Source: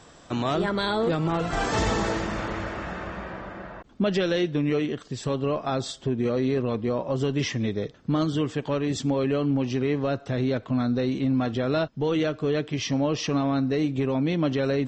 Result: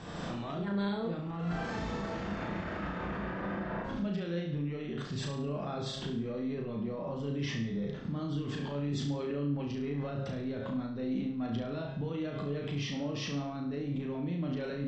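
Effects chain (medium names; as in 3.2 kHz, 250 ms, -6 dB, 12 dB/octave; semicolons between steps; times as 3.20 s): recorder AGC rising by 34 dB/s; low-pass 4.5 kHz 12 dB/octave; peaking EQ 180 Hz +9.5 dB 0.8 oct; de-hum 135.5 Hz, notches 30; peak limiter -32.5 dBFS, peak gain reduction 24.5 dB; on a send: flutter echo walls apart 6 m, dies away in 0.53 s; on the sum: trim +1.5 dB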